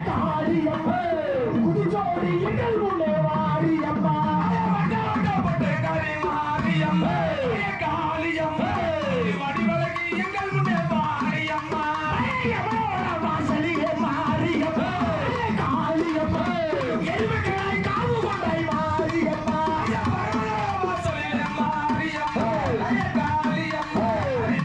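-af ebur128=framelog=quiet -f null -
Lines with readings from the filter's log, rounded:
Integrated loudness:
  I:         -24.1 LUFS
  Threshold: -34.1 LUFS
Loudness range:
  LRA:         1.6 LU
  Threshold: -44.1 LUFS
  LRA low:   -24.7 LUFS
  LRA high:  -23.1 LUFS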